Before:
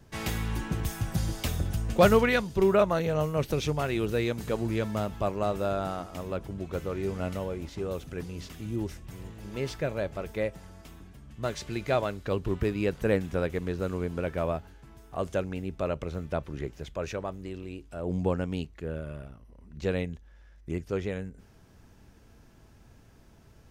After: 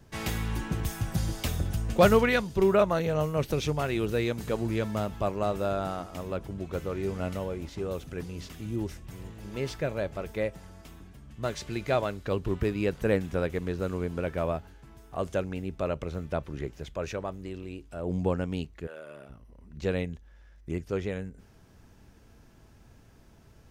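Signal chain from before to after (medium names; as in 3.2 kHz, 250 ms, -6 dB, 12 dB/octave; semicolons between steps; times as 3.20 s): 18.86–19.28 s: high-pass 870 Hz -> 230 Hz 12 dB/octave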